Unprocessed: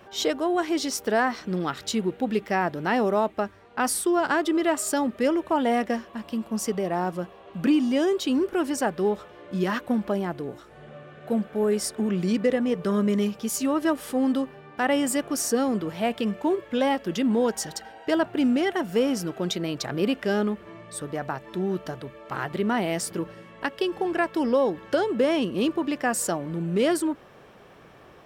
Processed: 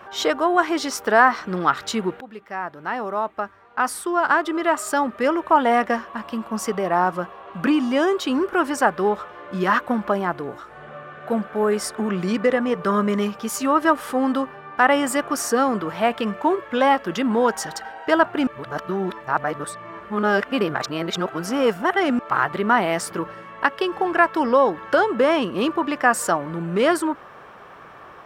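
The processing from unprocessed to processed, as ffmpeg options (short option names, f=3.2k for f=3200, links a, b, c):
-filter_complex "[0:a]asplit=4[a][b][c][d];[a]atrim=end=2.21,asetpts=PTS-STARTPTS,afade=t=out:st=2.206:d=0.004:c=hsin:silence=0.133352[e];[b]atrim=start=2.21:end=18.472,asetpts=PTS-STARTPTS,afade=t=in:d=3.69:silence=0.133352[f];[c]atrim=start=18.468:end=22.192,asetpts=PTS-STARTPTS,areverse[g];[d]atrim=start=22.188[h];[e][f]concat=n=2:v=0:a=1[i];[i][g]acrossfade=d=0.004:c1=hsin:c2=hsin[j];[j][h]acrossfade=d=0.004:c1=hsin:c2=hsin,equalizer=f=1.2k:t=o:w=1.6:g=13.5"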